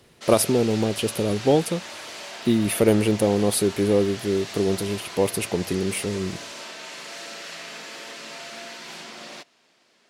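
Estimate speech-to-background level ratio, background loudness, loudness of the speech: 13.0 dB, −36.0 LKFS, −23.0 LKFS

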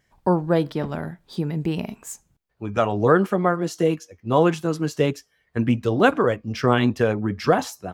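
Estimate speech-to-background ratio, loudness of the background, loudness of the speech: 19.0 dB, −41.0 LKFS, −22.0 LKFS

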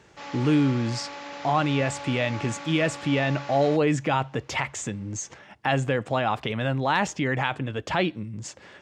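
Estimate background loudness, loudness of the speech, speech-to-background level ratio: −38.0 LKFS, −26.0 LKFS, 12.0 dB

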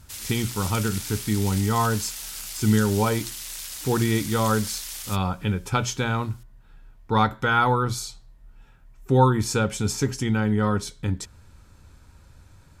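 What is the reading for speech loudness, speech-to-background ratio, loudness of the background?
−24.5 LKFS, 8.5 dB, −33.0 LKFS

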